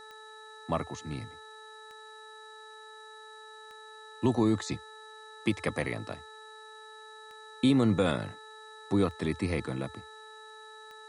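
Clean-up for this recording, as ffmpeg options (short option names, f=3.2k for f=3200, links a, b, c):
-af "adeclick=t=4,bandreject=f=435.2:t=h:w=4,bandreject=f=870.4:t=h:w=4,bandreject=f=1.3056k:t=h:w=4,bandreject=f=1.7408k:t=h:w=4,bandreject=f=3.9k:w=30,agate=range=-21dB:threshold=-41dB"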